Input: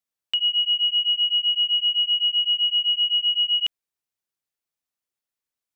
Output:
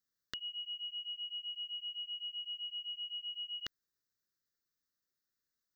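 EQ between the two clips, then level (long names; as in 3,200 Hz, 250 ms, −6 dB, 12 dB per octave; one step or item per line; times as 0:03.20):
Butterworth band-reject 2,400 Hz, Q 2.5
phaser with its sweep stopped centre 3,000 Hz, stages 6
+2.5 dB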